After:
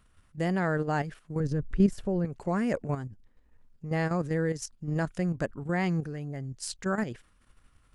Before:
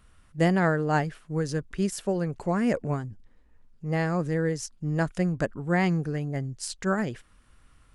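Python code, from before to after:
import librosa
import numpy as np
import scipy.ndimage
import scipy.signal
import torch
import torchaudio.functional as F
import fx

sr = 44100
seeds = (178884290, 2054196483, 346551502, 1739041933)

y = fx.tilt_eq(x, sr, slope=-3.0, at=(1.4, 2.25))
y = fx.level_steps(y, sr, step_db=9)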